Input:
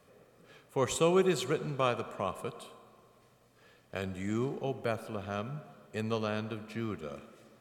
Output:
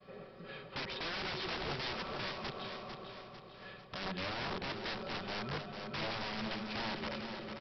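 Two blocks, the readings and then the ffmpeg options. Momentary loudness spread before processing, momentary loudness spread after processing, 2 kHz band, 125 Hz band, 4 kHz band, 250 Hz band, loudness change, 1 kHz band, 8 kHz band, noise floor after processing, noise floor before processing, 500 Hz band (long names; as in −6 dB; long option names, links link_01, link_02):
15 LU, 11 LU, +2.0 dB, −8.5 dB, +3.5 dB, −8.0 dB, −6.0 dB, −3.5 dB, −17.0 dB, −54 dBFS, −64 dBFS, −11.0 dB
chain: -filter_complex "[0:a]agate=range=-33dB:threshold=-59dB:ratio=3:detection=peak,aecho=1:1:5.3:0.68,asplit=2[link_01][link_02];[link_02]alimiter=limit=-22.5dB:level=0:latency=1:release=113,volume=-2dB[link_03];[link_01][link_03]amix=inputs=2:normalize=0,acompressor=threshold=-49dB:ratio=2,aresample=11025,aeval=exprs='(mod(84.1*val(0)+1,2)-1)/84.1':channel_layout=same,aresample=44100,aecho=1:1:449|898|1347|1796|2245|2694:0.447|0.214|0.103|0.0494|0.0237|0.0114,volume=4dB"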